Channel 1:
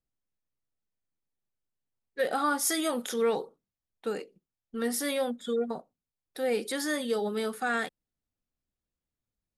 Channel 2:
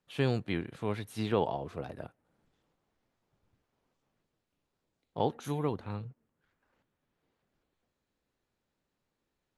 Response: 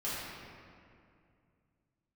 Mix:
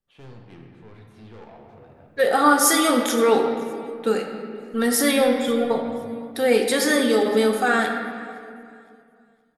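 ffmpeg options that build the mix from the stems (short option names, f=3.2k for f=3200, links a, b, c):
-filter_complex "[0:a]dynaudnorm=f=210:g=17:m=12.5dB,aphaser=in_gain=1:out_gain=1:delay=3.6:decay=0.22:speed=1:type=triangular,volume=-4.5dB,asplit=3[a][b][c];[b]volume=-5.5dB[d];[c]volume=-22dB[e];[1:a]lowpass=f=2.8k:p=1,asoftclip=type=tanh:threshold=-32.5dB,volume=-12dB,asplit=2[f][g];[g]volume=-3dB[h];[2:a]atrim=start_sample=2205[i];[d][h]amix=inputs=2:normalize=0[j];[j][i]afir=irnorm=-1:irlink=0[k];[e]aecho=0:1:515|1030|1545|2060|2575:1|0.32|0.102|0.0328|0.0105[l];[a][f][k][l]amix=inputs=4:normalize=0"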